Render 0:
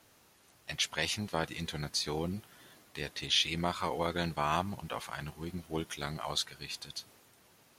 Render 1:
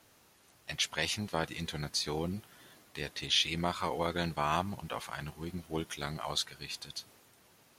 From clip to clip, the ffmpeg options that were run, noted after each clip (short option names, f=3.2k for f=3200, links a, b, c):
-af anull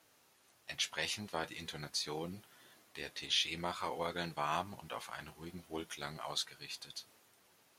-af "lowshelf=f=210:g=-9,flanger=delay=6.2:depth=4.9:regen=-59:speed=0.46:shape=triangular"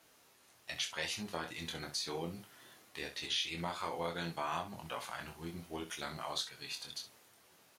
-af "acompressor=threshold=-40dB:ratio=2,aecho=1:1:24|65:0.531|0.266,volume=2dB"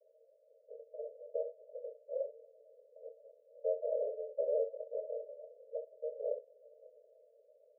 -af "afreqshift=-250,asuperpass=centerf=530:order=20:qfactor=2.5,volume=12dB"